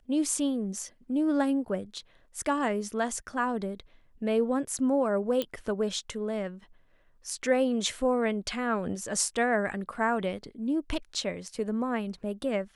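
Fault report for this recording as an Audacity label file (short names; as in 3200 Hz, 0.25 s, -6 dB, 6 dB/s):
5.420000	5.420000	pop -16 dBFS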